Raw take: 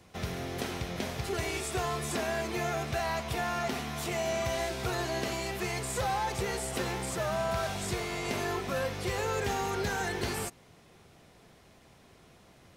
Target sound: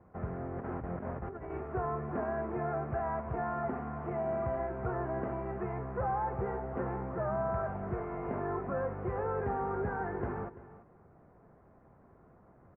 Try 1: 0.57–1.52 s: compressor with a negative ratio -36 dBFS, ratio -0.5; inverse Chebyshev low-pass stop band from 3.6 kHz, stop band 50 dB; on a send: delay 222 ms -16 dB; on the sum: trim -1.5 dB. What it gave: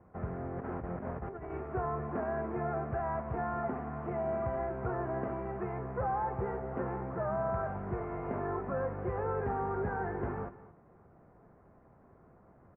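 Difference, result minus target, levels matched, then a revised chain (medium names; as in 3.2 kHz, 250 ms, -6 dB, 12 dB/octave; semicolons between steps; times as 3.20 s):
echo 117 ms early
0.57–1.52 s: compressor with a negative ratio -36 dBFS, ratio -0.5; inverse Chebyshev low-pass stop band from 3.6 kHz, stop band 50 dB; on a send: delay 339 ms -16 dB; on the sum: trim -1.5 dB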